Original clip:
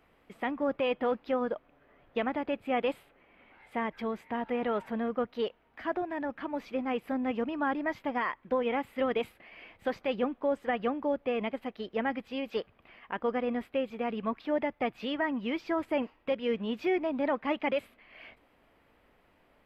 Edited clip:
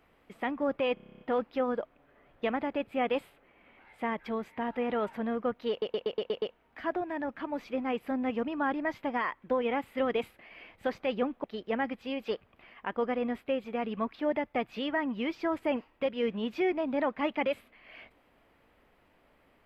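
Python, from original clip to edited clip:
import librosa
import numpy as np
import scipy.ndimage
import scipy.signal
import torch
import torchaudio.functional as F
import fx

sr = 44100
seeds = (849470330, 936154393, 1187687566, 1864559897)

y = fx.edit(x, sr, fx.stutter(start_s=0.94, slice_s=0.03, count=10),
    fx.stutter(start_s=5.43, slice_s=0.12, count=7),
    fx.cut(start_s=10.45, length_s=1.25), tone=tone)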